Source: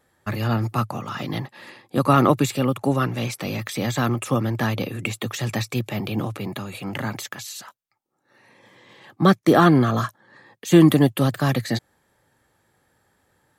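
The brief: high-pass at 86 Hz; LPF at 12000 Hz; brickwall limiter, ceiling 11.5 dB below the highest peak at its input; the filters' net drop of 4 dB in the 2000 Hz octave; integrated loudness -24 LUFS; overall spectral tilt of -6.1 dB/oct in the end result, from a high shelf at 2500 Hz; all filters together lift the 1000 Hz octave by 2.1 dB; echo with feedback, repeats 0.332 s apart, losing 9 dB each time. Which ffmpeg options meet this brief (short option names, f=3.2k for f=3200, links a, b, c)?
-af "highpass=86,lowpass=12k,equalizer=f=1k:t=o:g=5.5,equalizer=f=2k:t=o:g=-4,highshelf=f=2.5k:g=-8,alimiter=limit=-12.5dB:level=0:latency=1,aecho=1:1:332|664|996|1328:0.355|0.124|0.0435|0.0152,volume=1dB"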